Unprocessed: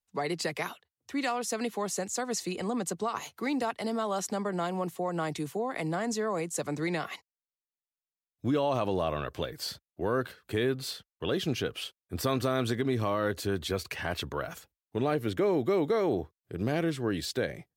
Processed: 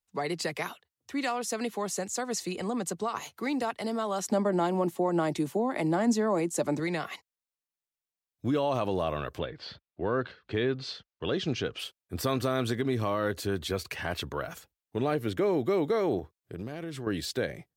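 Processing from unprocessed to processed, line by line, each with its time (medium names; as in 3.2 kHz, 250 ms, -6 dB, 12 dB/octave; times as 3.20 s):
4.30–6.80 s: small resonant body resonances 240/340/590/850 Hz, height 9 dB
9.38–11.78 s: low-pass 3.5 kHz -> 7.1 kHz 24 dB/octave
16.19–17.07 s: compression, threshold -33 dBFS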